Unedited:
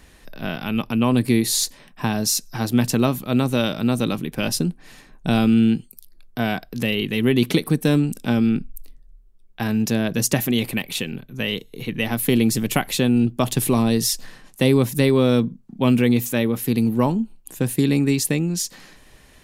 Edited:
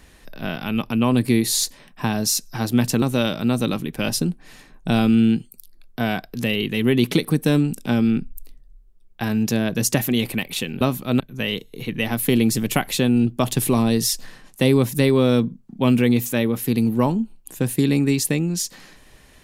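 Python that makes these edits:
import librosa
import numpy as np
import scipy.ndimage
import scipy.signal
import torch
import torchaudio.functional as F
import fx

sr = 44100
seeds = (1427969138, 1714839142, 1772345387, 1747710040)

y = fx.edit(x, sr, fx.move(start_s=3.02, length_s=0.39, to_s=11.2), tone=tone)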